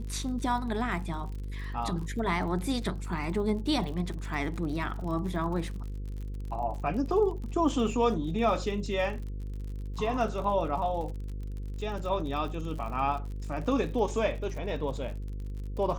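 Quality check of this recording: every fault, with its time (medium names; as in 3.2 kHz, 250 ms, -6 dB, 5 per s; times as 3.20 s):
buzz 50 Hz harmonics 10 -36 dBFS
crackle 51 per s -38 dBFS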